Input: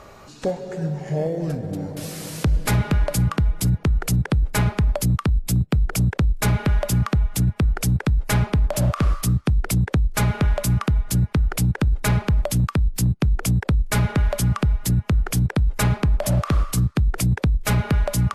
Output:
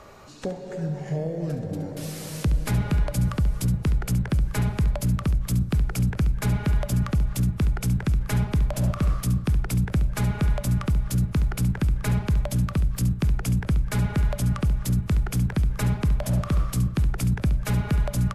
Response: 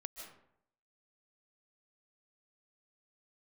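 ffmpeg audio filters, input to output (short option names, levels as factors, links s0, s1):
-filter_complex "[0:a]acrossover=split=310[s0][s1];[s1]acompressor=threshold=0.0251:ratio=2[s2];[s0][s2]amix=inputs=2:normalize=0,aecho=1:1:1196|2392|3588|4784|5980:0.126|0.0705|0.0395|0.0221|0.0124,asplit=2[s3][s4];[1:a]atrim=start_sample=2205,asetrate=37044,aresample=44100,adelay=70[s5];[s4][s5]afir=irnorm=-1:irlink=0,volume=0.447[s6];[s3][s6]amix=inputs=2:normalize=0,volume=0.708"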